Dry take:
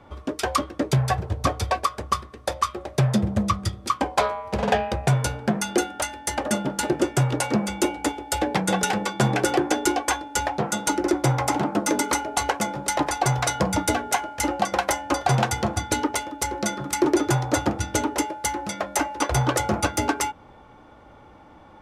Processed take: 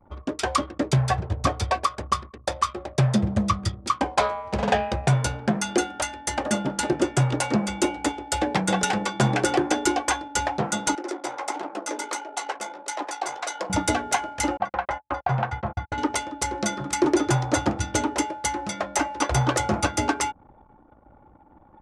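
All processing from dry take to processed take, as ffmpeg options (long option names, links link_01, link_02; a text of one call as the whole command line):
ffmpeg -i in.wav -filter_complex "[0:a]asettb=1/sr,asplit=3[link_01][link_02][link_03];[link_01]atrim=end=10.954[link_04];[link_02]atrim=start=10.95:end=13.7,asetpts=PTS-STARTPTS,afade=type=in:duration=0.004:curve=qsin,afade=type=out:start_time=2.746:duration=0.004:curve=qsin,highpass=frequency=340:width=0.5412,highpass=frequency=340:width=1.3066,tremolo=f=56:d=0.462,flanger=delay=5.5:depth=8.8:regen=-44:speed=1.5:shape=triangular[link_05];[link_03]atrim=start=13.696[link_06];[link_04][link_05]acrossfade=duration=0.004:curve1=hsin:curve2=qsin[link_07];[link_07][link_06]acrossfade=duration=0.004:curve1=qsin:curve2=hsin,asettb=1/sr,asplit=3[link_08][link_09][link_10];[link_08]atrim=end=14.574[link_11];[link_09]atrim=start=14.57:end=15.98,asetpts=PTS-STARTPTS,afade=type=in:duration=0.004:curve=qsin,afade=type=out:start_time=1.406:duration=0.004:curve=qsin,lowpass=1600,equalizer=frequency=290:width=0.9:gain=-11.5,agate=range=-25dB:threshold=-34dB:ratio=16:release=100:detection=peak[link_12];[link_10]atrim=start=15.976[link_13];[link_11][link_12]acrossfade=duration=0.004:curve1=hsin:curve2=qsin[link_14];[link_14][link_13]acrossfade=duration=0.004:curve1=qsin:curve2=hsin,lowpass=frequency=9700:width=0.5412,lowpass=frequency=9700:width=1.3066,anlmdn=0.0398,equalizer=frequency=460:width_type=o:width=0.31:gain=-3" out.wav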